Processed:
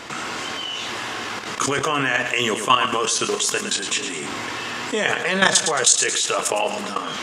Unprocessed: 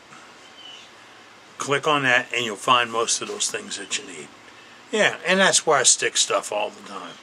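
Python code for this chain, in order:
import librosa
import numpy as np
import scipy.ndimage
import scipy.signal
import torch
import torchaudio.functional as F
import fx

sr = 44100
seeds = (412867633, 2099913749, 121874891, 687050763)

y = fx.peak_eq(x, sr, hz=560.0, db=-3.5, octaves=0.35)
y = fx.level_steps(y, sr, step_db=16)
y = fx.doubler(y, sr, ms=25.0, db=-13)
y = fx.echo_feedback(y, sr, ms=110, feedback_pct=33, wet_db=-13.5)
y = fx.env_flatten(y, sr, amount_pct=50)
y = F.gain(torch.from_numpy(y), 2.5).numpy()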